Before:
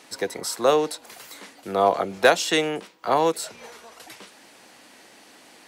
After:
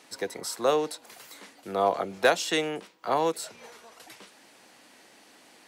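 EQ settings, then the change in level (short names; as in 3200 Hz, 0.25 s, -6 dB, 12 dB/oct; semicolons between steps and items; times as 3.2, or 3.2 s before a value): HPF 66 Hz; -5.0 dB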